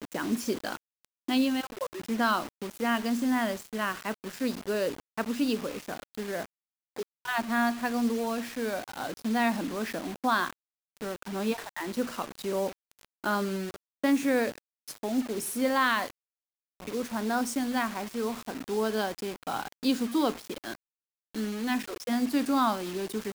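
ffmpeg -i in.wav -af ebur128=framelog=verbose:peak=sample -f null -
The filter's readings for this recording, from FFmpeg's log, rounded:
Integrated loudness:
  I:         -30.5 LUFS
  Threshold: -40.8 LUFS
Loudness range:
  LRA:         3.3 LU
  Threshold: -51.0 LUFS
  LRA low:   -32.8 LUFS
  LRA high:  -29.6 LUFS
Sample peak:
  Peak:      -12.3 dBFS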